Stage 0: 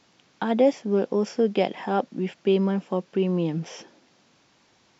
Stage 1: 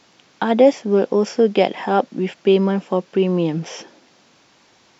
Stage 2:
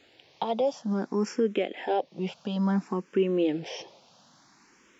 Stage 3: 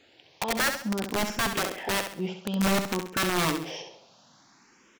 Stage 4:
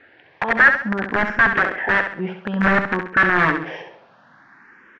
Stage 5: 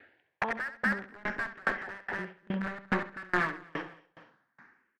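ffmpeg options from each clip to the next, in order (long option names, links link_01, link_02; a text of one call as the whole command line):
ffmpeg -i in.wav -af "bass=frequency=250:gain=-4,treble=frequency=4000:gain=0,volume=7.5dB" out.wav
ffmpeg -i in.wav -filter_complex "[0:a]alimiter=limit=-12dB:level=0:latency=1:release=353,asplit=2[link_01][link_02];[link_02]afreqshift=0.58[link_03];[link_01][link_03]amix=inputs=2:normalize=1,volume=-2dB" out.wav
ffmpeg -i in.wav -af "aeval=exprs='(mod(11.2*val(0)+1,2)-1)/11.2':channel_layout=same,aecho=1:1:67|134|201|268:0.422|0.16|0.0609|0.0231" out.wav
ffmpeg -i in.wav -af "lowpass=frequency=1700:width_type=q:width=4.9,volume=5dB" out.wav
ffmpeg -i in.wav -filter_complex "[0:a]asplit=2[link_01][link_02];[link_02]asoftclip=type=tanh:threshold=-20dB,volume=-4dB[link_03];[link_01][link_03]amix=inputs=2:normalize=0,aecho=1:1:241|482|723:0.473|0.109|0.025,aeval=exprs='val(0)*pow(10,-31*if(lt(mod(2.4*n/s,1),2*abs(2.4)/1000),1-mod(2.4*n/s,1)/(2*abs(2.4)/1000),(mod(2.4*n/s,1)-2*abs(2.4)/1000)/(1-2*abs(2.4)/1000))/20)':channel_layout=same,volume=-9dB" out.wav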